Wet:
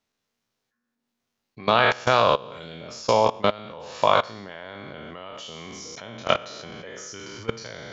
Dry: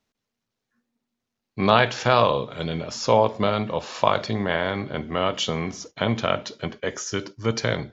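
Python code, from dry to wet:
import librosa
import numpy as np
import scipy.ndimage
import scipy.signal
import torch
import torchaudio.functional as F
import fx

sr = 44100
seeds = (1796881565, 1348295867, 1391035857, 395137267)

y = fx.spec_trails(x, sr, decay_s=0.82)
y = fx.low_shelf(y, sr, hz=330.0, db=-5.5)
y = fx.level_steps(y, sr, step_db=21)
y = y * librosa.db_to_amplitude(3.0)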